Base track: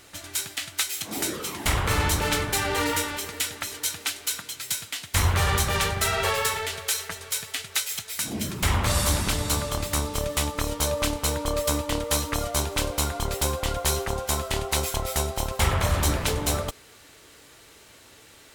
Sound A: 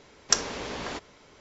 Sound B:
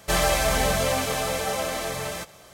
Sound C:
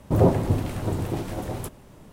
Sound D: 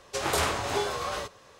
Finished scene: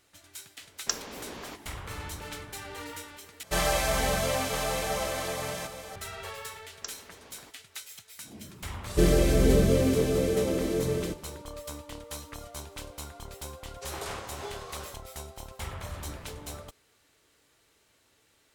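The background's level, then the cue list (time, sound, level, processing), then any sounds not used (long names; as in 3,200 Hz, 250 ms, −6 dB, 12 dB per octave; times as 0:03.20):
base track −15.5 dB
0:00.57: mix in A −7.5 dB
0:03.43: overwrite with B −4.5 dB + single-tap delay 1,013 ms −11 dB
0:06.52: mix in A −18 dB
0:08.89: mix in B −9 dB + low shelf with overshoot 560 Hz +13.5 dB, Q 3
0:13.68: mix in D −11.5 dB
not used: C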